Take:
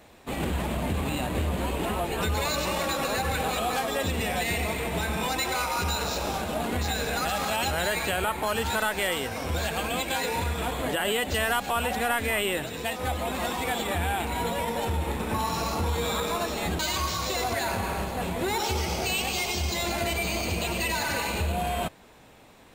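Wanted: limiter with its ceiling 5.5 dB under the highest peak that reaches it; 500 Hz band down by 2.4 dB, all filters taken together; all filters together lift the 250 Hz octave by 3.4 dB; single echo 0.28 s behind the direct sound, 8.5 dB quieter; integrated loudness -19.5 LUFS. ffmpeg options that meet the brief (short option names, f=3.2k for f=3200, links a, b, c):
-af "equalizer=f=250:t=o:g=5.5,equalizer=f=500:t=o:g=-4.5,alimiter=limit=-19.5dB:level=0:latency=1,aecho=1:1:280:0.376,volume=8.5dB"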